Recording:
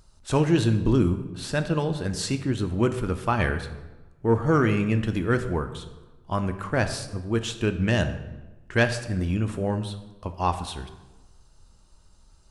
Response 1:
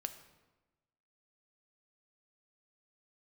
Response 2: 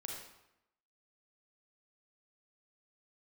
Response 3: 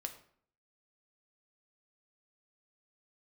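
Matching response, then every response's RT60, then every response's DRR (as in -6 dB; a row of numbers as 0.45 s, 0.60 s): 1; 1.1 s, 0.85 s, 0.60 s; 8.0 dB, -1.0 dB, 5.5 dB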